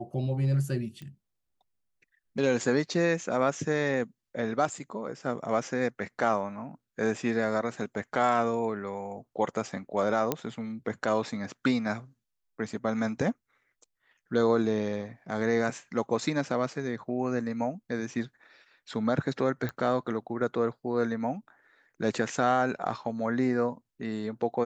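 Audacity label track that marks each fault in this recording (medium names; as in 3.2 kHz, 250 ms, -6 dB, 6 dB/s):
1.020000	1.020000	pop -30 dBFS
10.320000	10.320000	pop -11 dBFS
19.690000	19.690000	pop -20 dBFS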